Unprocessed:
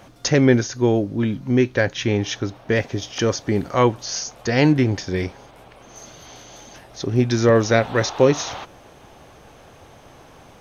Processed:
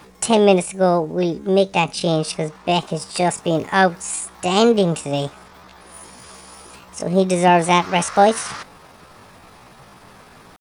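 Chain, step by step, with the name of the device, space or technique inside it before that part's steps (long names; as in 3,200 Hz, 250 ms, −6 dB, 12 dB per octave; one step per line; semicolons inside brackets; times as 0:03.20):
chipmunk voice (pitch shifter +7.5 semitones)
level +1.5 dB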